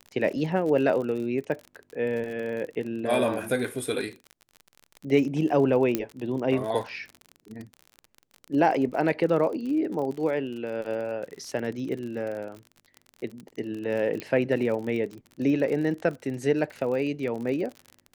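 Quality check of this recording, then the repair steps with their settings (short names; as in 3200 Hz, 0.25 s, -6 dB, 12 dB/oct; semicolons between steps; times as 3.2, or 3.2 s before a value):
crackle 46/s -33 dBFS
5.95 pop -10 dBFS
14.2 pop -18 dBFS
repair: de-click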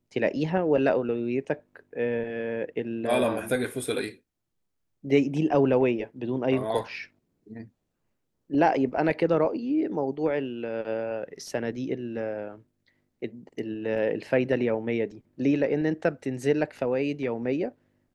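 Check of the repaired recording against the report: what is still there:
none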